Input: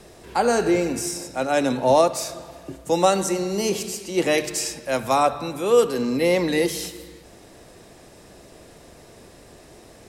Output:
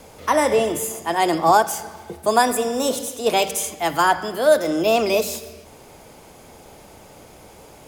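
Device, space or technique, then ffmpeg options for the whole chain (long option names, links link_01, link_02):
nightcore: -af "asetrate=56448,aresample=44100,volume=2dB"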